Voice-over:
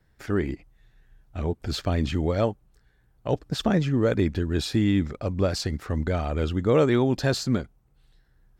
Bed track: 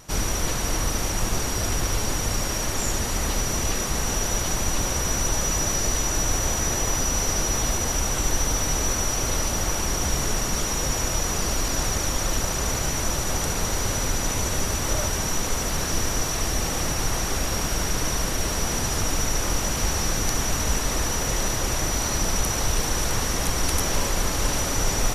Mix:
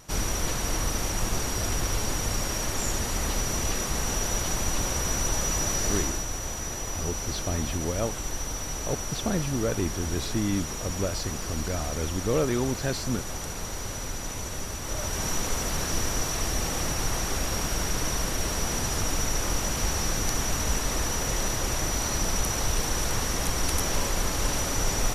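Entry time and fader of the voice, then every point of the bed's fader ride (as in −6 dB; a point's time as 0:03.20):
5.60 s, −5.5 dB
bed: 0:05.99 −3 dB
0:06.27 −9 dB
0:14.82 −9 dB
0:15.26 −3 dB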